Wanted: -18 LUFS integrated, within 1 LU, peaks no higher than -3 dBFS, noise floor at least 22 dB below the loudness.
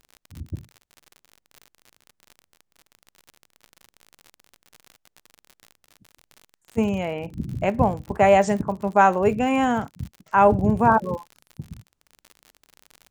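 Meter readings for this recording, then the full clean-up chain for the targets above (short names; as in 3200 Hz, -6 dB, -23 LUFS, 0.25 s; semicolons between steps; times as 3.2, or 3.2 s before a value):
ticks 54/s; loudness -21.0 LUFS; peak -4.0 dBFS; loudness target -18.0 LUFS
-> de-click; gain +3 dB; limiter -3 dBFS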